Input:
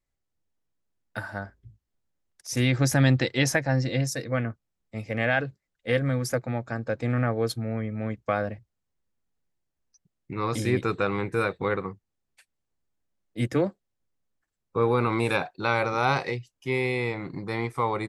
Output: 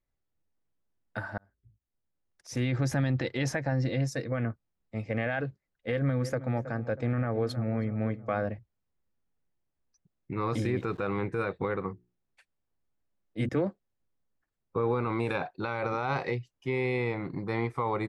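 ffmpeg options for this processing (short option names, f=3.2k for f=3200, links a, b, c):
-filter_complex "[0:a]asettb=1/sr,asplit=3[a][b][c];[a]atrim=end=5.924[d];[b]atrim=start=5.92:end=8.46,asetpts=PTS-STARTPTS,afade=t=in:d=0.004:c=qsin,afade=t=out:st=2.536:d=0.004:c=qsin,asplit=2[e][f];[f]adelay=320,lowpass=f=1.3k:p=1,volume=-15dB,asplit=2[g][h];[h]adelay=320,lowpass=f=1.3k:p=1,volume=0.49,asplit=2[i][j];[j]adelay=320,lowpass=f=1.3k:p=1,volume=0.49,asplit=2[k][l];[l]adelay=320,lowpass=f=1.3k:p=1,volume=0.49,asplit=2[m][n];[n]adelay=320,lowpass=f=1.3k:p=1,volume=0.49[o];[e][g][i][k][m][o]amix=inputs=6:normalize=0,atrim=end_sample=112014[p];[c]atrim=start=8.456[q];[d][p]acrossfade=d=0.004:c1=hsin:c2=qsin[r];[r][q]acrossfade=d=0.004:c1=qsin:c2=hsin,asettb=1/sr,asplit=3[s][t][u];[s]atrim=end=10.514[v];[t]atrim=start=10.51:end=11.08,asetpts=PTS-STARTPTS,afade=t=in:d=0.004:c=qsin,afade=t=out:st=0.566:d=0.004:c=qsin,aeval=exprs='val(0)*gte(abs(val(0)),0.00447)':c=same[w];[u]atrim=start=11.076[x];[v][w]acrossfade=d=0.004:c1=hsin:c2=qsin[y];[y][x]acrossfade=d=0.004:c1=qsin:c2=hsin,asettb=1/sr,asplit=3[z][aa][ab];[z]atrim=end=11.884[ac];[aa]atrim=start=11.88:end=13.49,asetpts=PTS-STARTPTS,afade=t=in:d=0.004:c=qsin,afade=t=out:st=1.606:d=0.004:c=qsin,bandreject=f=60:t=h:w=6,bandreject=f=120:t=h:w=6,bandreject=f=180:t=h:w=6,bandreject=f=240:t=h:w=6,bandreject=f=300:t=h:w=6,bandreject=f=360:t=h:w=6,bandreject=f=420:t=h:w=6[ad];[ab]atrim=start=13.486[ae];[ac][ad]acrossfade=d=0.004:c1=hsin:c2=qsin[af];[af][ae]acrossfade=d=0.004:c1=qsin:c2=hsin,asplit=2[ag][ah];[ag]atrim=end=1.38,asetpts=PTS-STARTPTS,afade=t=out:st=1.376:d=0.004:c=hsin[ai];[ah]atrim=start=1.38,asetpts=PTS-STARTPTS,afade=t=in:d=1.13[aj];[ai][aj]concat=n=2:v=0:a=1,aemphasis=mode=reproduction:type=75kf,alimiter=limit=-19.5dB:level=0:latency=1:release=52"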